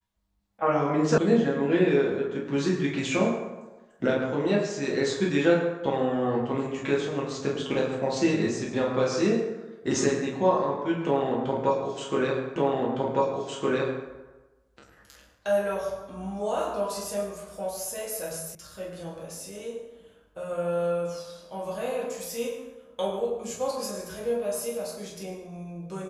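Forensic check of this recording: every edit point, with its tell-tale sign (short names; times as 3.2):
1.18 sound cut off
12.56 repeat of the last 1.51 s
18.55 sound cut off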